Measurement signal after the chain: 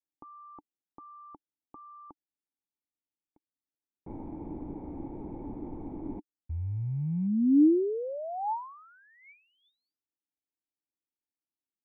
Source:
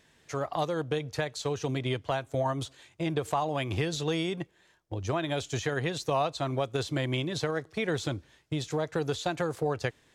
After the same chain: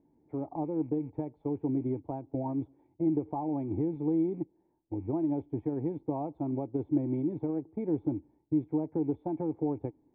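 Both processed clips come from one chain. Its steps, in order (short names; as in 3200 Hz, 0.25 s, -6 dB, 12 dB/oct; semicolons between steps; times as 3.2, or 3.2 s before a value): rattling part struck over -39 dBFS, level -33 dBFS; vocal tract filter u; gain +8.5 dB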